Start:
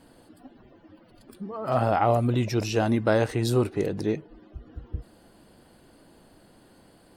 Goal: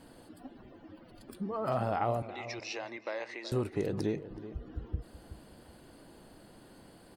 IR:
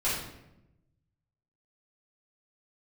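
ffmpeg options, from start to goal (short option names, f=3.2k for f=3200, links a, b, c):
-filter_complex "[0:a]acompressor=threshold=-30dB:ratio=3,asettb=1/sr,asplit=3[a][b][c];[a]atrim=end=2.224[d];[b]atrim=start=2.22:end=3.52,asetpts=PTS-STARTPTS,afade=t=in:d=0.004:c=qsin,afade=t=out:st=1.296:d=0.004:c=qsin,highpass=f=430:w=0.5412,highpass=f=430:w=1.3066,equalizer=f=440:t=q:w=4:g=-10,equalizer=f=720:t=q:w=4:g=-8,equalizer=f=1.4k:t=q:w=4:g=-9,equalizer=f=2.1k:t=q:w=4:g=8,equalizer=f=3.2k:t=q:w=4:g=-7,lowpass=f=5.4k:w=0.5412,lowpass=f=5.4k:w=1.3066[e];[c]atrim=start=3.516[f];[d][e]acrossfade=d=0.004:c1=hsin:c2=qsin[g];[g][f]acrossfade=d=0.004:c1=qsin:c2=hsin,asplit=2[h][i];[i]adelay=374,lowpass=f=1.4k:p=1,volume=-12.5dB,asplit=2[j][k];[k]adelay=374,lowpass=f=1.4k:p=1,volume=0.26,asplit=2[l][m];[m]adelay=374,lowpass=f=1.4k:p=1,volume=0.26[n];[j][l][n]amix=inputs=3:normalize=0[o];[h][o]amix=inputs=2:normalize=0"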